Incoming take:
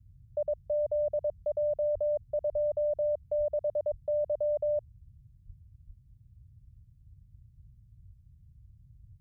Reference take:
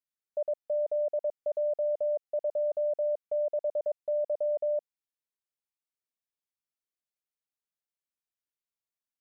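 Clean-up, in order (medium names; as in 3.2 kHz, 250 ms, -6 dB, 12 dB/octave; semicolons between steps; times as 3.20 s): de-plosive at 1.93/2.51/3.37/3.90/5.46/5.86 s; noise print and reduce 30 dB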